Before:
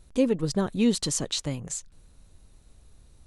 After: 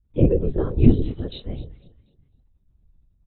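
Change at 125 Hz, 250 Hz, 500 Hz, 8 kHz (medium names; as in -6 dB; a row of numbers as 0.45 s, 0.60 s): +12.0 dB, +3.5 dB, +3.5 dB, under -40 dB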